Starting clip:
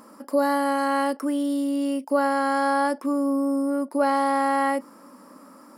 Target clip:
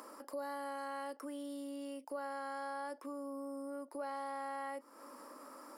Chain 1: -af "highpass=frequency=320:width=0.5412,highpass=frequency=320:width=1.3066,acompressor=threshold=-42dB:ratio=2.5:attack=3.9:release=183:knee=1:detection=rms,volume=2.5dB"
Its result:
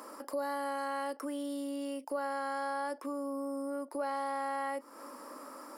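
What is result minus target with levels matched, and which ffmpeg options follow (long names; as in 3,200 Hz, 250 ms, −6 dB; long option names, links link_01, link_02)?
downward compressor: peak gain reduction −6.5 dB
-af "highpass=frequency=320:width=0.5412,highpass=frequency=320:width=1.3066,acompressor=threshold=-53dB:ratio=2.5:attack=3.9:release=183:knee=1:detection=rms,volume=2.5dB"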